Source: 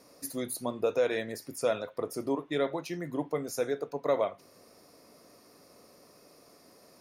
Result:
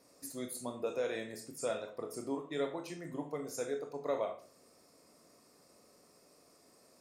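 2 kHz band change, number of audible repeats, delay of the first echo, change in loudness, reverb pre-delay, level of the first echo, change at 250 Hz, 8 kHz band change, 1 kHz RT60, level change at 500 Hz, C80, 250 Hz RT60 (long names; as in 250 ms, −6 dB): −7.0 dB, no echo audible, no echo audible, −7.0 dB, 19 ms, no echo audible, −6.5 dB, −4.0 dB, 0.40 s, −7.0 dB, 15.0 dB, 0.40 s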